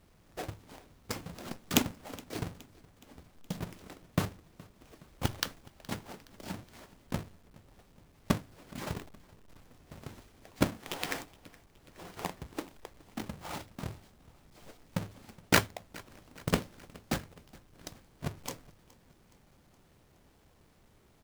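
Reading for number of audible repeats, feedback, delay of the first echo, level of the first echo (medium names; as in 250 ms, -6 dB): 3, 54%, 419 ms, -23.0 dB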